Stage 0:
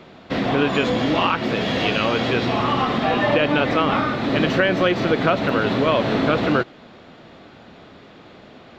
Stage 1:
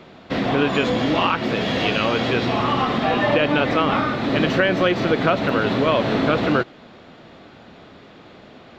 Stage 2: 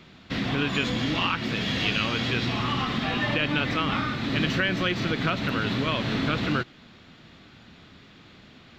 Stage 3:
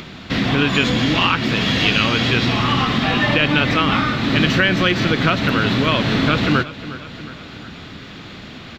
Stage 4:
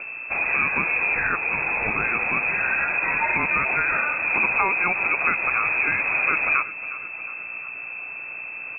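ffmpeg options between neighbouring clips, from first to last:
-af anull
-af "equalizer=f=590:w=0.61:g=-14"
-filter_complex "[0:a]aecho=1:1:360|720|1080|1440:0.15|0.0733|0.0359|0.0176,asplit=2[s0][s1];[s1]acompressor=mode=upward:threshold=0.0316:ratio=2.5,volume=0.794[s2];[s0][s2]amix=inputs=2:normalize=0,volume=1.58"
-af "aeval=exprs='val(0)+0.0355*(sin(2*PI*60*n/s)+sin(2*PI*2*60*n/s)/2+sin(2*PI*3*60*n/s)/3+sin(2*PI*4*60*n/s)/4+sin(2*PI*5*60*n/s)/5)':c=same,lowpass=f=2300:t=q:w=0.5098,lowpass=f=2300:t=q:w=0.6013,lowpass=f=2300:t=q:w=0.9,lowpass=f=2300:t=q:w=2.563,afreqshift=-2700,volume=0.562"

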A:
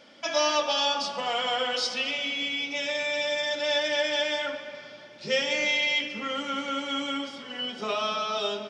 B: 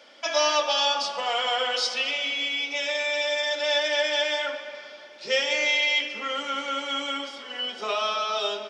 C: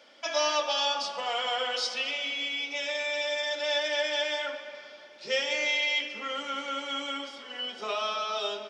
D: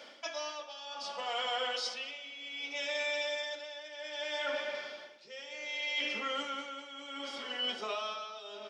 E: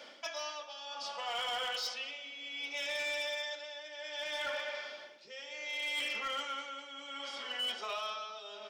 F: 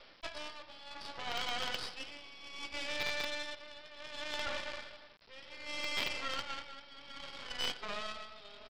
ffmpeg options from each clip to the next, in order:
-af "highpass=420,volume=1.33"
-af "lowshelf=f=150:g=5,volume=0.596"
-af "areverse,acompressor=threshold=0.0141:ratio=6,areverse,tremolo=f=0.65:d=0.77,volume=1.88"
-filter_complex "[0:a]acrossover=split=550[s0][s1];[s0]acompressor=threshold=0.00141:ratio=6[s2];[s1]volume=37.6,asoftclip=hard,volume=0.0266[s3];[s2][s3]amix=inputs=2:normalize=0"
-af "aresample=11025,acrusher=bits=6:dc=4:mix=0:aa=0.000001,aresample=44100,aeval=exprs='0.0668*(cos(1*acos(clip(val(0)/0.0668,-1,1)))-cos(1*PI/2))+0.00531*(cos(7*acos(clip(val(0)/0.0668,-1,1)))-cos(7*PI/2))':c=same,volume=1.58"

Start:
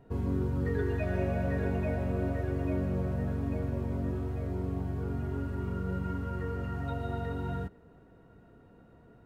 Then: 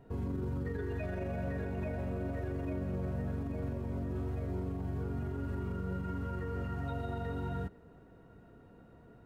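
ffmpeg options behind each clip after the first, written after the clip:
-af "alimiter=level_in=1.78:limit=0.0631:level=0:latency=1:release=56,volume=0.562"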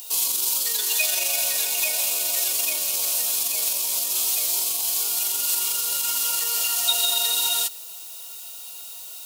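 -af "aexciter=amount=14:drive=9.4:freq=2800,highpass=f=860:t=q:w=1.7,crystalizer=i=3.5:c=0,volume=1.68"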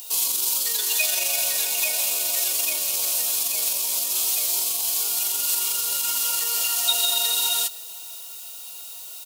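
-af "aecho=1:1:518:0.0708"

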